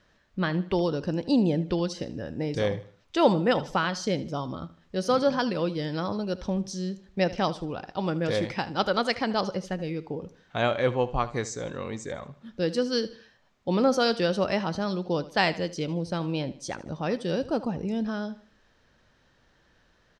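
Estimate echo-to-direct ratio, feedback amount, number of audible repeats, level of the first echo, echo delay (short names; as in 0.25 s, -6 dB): -16.5 dB, 39%, 3, -17.0 dB, 77 ms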